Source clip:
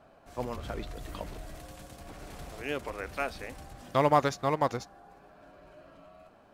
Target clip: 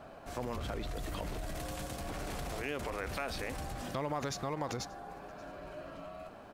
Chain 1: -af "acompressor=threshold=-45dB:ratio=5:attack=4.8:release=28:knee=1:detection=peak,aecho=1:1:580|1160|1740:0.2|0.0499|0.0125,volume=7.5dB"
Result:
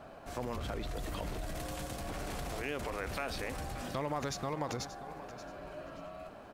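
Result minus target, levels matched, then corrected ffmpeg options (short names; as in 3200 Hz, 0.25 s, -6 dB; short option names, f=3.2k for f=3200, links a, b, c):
echo-to-direct +9.5 dB
-af "acompressor=threshold=-45dB:ratio=5:attack=4.8:release=28:knee=1:detection=peak,aecho=1:1:580|1160:0.0668|0.0167,volume=7.5dB"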